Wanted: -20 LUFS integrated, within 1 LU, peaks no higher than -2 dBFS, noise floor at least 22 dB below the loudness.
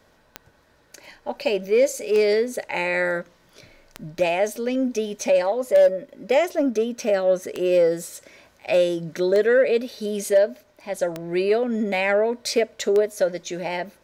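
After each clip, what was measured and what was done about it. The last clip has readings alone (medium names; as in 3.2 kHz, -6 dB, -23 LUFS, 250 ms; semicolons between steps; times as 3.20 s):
clicks found 8; loudness -22.0 LUFS; peak level -6.5 dBFS; loudness target -20.0 LUFS
-> de-click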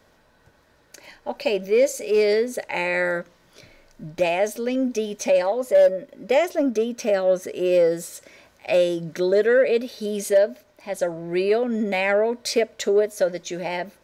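clicks found 0; loudness -22.0 LUFS; peak level -9.5 dBFS; loudness target -20.0 LUFS
-> trim +2 dB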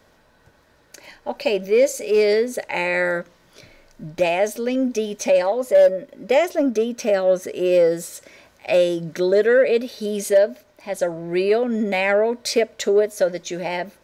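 loudness -20.0 LUFS; peak level -7.5 dBFS; noise floor -57 dBFS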